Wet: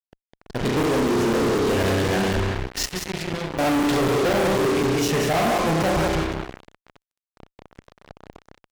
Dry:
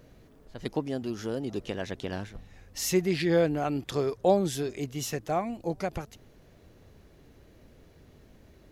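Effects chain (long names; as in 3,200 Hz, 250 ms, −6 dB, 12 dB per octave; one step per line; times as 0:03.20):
0:02.85–0:03.58: guitar amp tone stack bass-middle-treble 6-0-2
0:04.17–0:04.62: treble cut that deepens with the level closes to 560 Hz, closed at −20 dBFS
spring reverb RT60 1.4 s, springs 31 ms, chirp 60 ms, DRR 0.5 dB
flanger 0.81 Hz, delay 2.7 ms, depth 5.7 ms, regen −58%
in parallel at −5.5 dB: bit reduction 4 bits
on the sum: high-frequency loss of the air 110 metres
on a send: repeating echo 189 ms, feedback 20%, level −7.5 dB
on the sum: fuzz pedal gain 47 dB, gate −47 dBFS
regular buffer underruns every 0.25 s, samples 256, zero, from 0:00.83
level −5.5 dB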